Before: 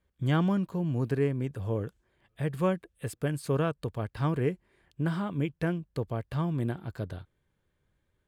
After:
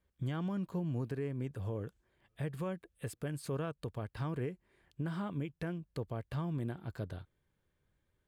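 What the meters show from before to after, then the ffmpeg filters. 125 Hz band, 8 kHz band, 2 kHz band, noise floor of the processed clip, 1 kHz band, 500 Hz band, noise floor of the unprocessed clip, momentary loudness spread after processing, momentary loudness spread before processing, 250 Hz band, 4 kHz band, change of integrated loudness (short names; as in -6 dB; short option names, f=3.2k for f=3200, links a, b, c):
-8.0 dB, -5.5 dB, -9.0 dB, -80 dBFS, -9.5 dB, -9.5 dB, -77 dBFS, 7 LU, 9 LU, -8.5 dB, -8.5 dB, -8.5 dB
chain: -af "alimiter=level_in=2dB:limit=-24dB:level=0:latency=1:release=225,volume=-2dB,volume=-3.5dB"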